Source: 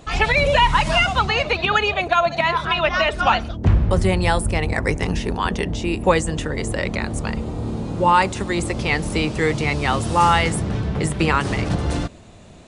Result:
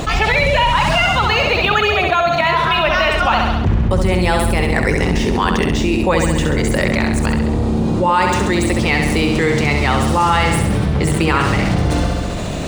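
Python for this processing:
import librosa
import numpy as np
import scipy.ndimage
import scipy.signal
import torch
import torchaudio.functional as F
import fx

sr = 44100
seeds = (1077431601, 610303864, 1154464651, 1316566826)

y = scipy.signal.medfilt(x, 3)
y = fx.echo_feedback(y, sr, ms=67, feedback_pct=54, wet_db=-6)
y = fx.env_flatten(y, sr, amount_pct=70)
y = F.gain(torch.from_numpy(y), -1.5).numpy()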